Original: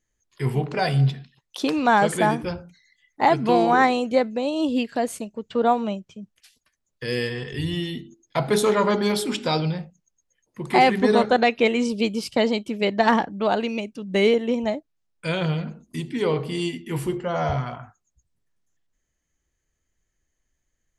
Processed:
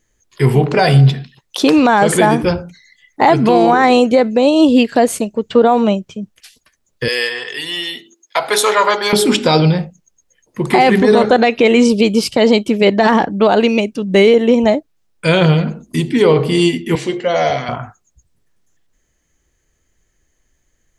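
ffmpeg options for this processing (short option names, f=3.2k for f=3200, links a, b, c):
-filter_complex "[0:a]asettb=1/sr,asplit=3[a][b][c];[a]atrim=end=7.084[d];[b]atrim=start=7.08:end=9.13,asetpts=PTS-STARTPTS,afade=t=in:d=0.004:c=qsin,afade=t=out:st=2.046:d=0.004:c=qsin,highpass=820[e];[c]atrim=start=9.126[f];[d][e]acrossfade=d=0.004:c1=hsin:c2=qsin[g];[g][f]acrossfade=d=0.004:c1=qsin:c2=hsin,asettb=1/sr,asplit=3[h][i][j];[h]atrim=end=16.954[k];[i]atrim=start=16.95:end=17.69,asetpts=PTS-STARTPTS,afade=t=in:d=0.004:c=qsin,afade=t=out:st=0.736:d=0.004:c=qsin,highpass=320,equalizer=f=380:t=q:w=4:g=-7,equalizer=f=920:t=q:w=4:g=-10,equalizer=f=1.3k:t=q:w=4:g=-9,equalizer=f=2.1k:t=q:w=4:g=4,equalizer=f=3.9k:t=q:w=4:g=7,equalizer=f=6.3k:t=q:w=4:g=4,lowpass=f=7.1k:w=0.5412,lowpass=f=7.1k:w=1.3066[l];[j]atrim=start=17.686[m];[k][l]acrossfade=d=0.004:c1=hsin:c2=qsin[n];[n][m]acrossfade=d=0.004:c1=qsin:c2=hsin,equalizer=f=420:w=1.5:g=2.5,alimiter=level_in=13.5dB:limit=-1dB:release=50:level=0:latency=1,volume=-1dB"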